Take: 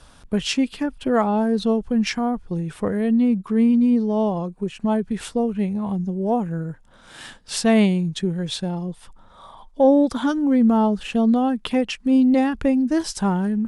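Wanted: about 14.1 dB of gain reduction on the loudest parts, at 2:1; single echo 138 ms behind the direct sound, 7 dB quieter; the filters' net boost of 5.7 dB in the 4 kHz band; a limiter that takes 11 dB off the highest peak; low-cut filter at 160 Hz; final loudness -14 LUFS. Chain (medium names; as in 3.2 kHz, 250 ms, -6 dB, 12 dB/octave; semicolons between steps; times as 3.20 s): high-pass 160 Hz; peaking EQ 4 kHz +7.5 dB; compression 2:1, threshold -39 dBFS; peak limiter -26 dBFS; delay 138 ms -7 dB; trim +19.5 dB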